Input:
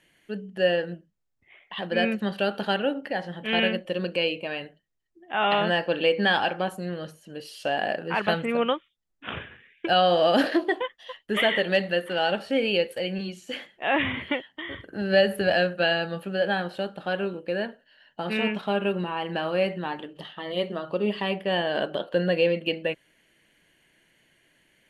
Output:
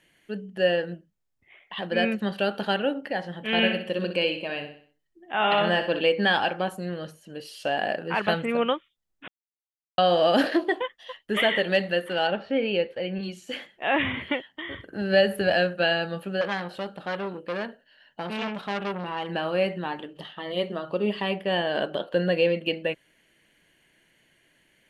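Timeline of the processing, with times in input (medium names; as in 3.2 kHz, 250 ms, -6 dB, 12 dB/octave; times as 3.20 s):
3.51–6.01 s: feedback delay 62 ms, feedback 43%, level -9 dB
9.28–9.98 s: mute
12.27–13.23 s: distance through air 250 m
16.41–19.28 s: transformer saturation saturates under 1.5 kHz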